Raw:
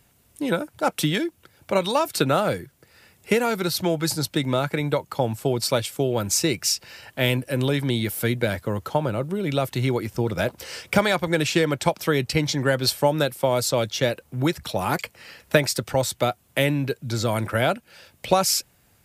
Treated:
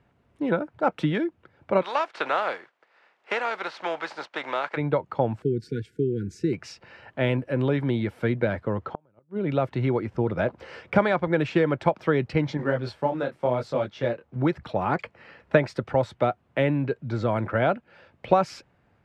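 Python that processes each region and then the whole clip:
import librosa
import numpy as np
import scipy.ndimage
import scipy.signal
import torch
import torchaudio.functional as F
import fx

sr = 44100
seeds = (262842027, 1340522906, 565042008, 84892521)

y = fx.spec_flatten(x, sr, power=0.6, at=(1.81, 4.76), fade=0.02)
y = fx.bandpass_edges(y, sr, low_hz=640.0, high_hz=6900.0, at=(1.81, 4.76), fade=0.02)
y = fx.chain(y, sr, fx.brickwall_bandstop(low_hz=480.0, high_hz=1400.0),
    fx.peak_eq(hz=2600.0, db=-13.0, octaves=1.9), at=(5.42, 6.53))
y = fx.chain(y, sr, fx.high_shelf(hz=8400.0, db=-10.5),
    fx.gate_flip(shuts_db=-16.0, range_db=-38), at=(8.78, 9.49))
y = fx.chain(y, sr, fx.quant_companded(bits=6),
    fx.detune_double(cents=29), at=(12.57, 14.36))
y = scipy.signal.sosfilt(scipy.signal.butter(2, 1700.0, 'lowpass', fs=sr, output='sos'), y)
y = fx.low_shelf(y, sr, hz=78.0, db=-7.0)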